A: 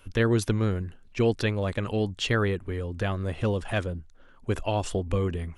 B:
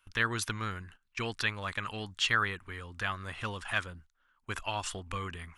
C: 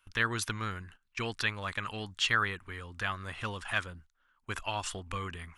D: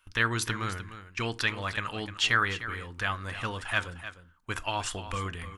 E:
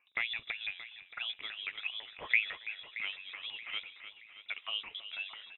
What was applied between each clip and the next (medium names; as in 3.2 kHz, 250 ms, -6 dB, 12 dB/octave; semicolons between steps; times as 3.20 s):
gate -41 dBFS, range -13 dB; resonant low shelf 780 Hz -13 dB, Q 1.5
no audible change
delay 303 ms -12.5 dB; on a send at -13 dB: reverberation RT60 0.35 s, pre-delay 3 ms; on the sum: trim +3 dB
LFO band-pass saw down 6 Hz 310–1700 Hz; feedback delay 626 ms, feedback 41%, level -15 dB; frequency inversion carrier 3.8 kHz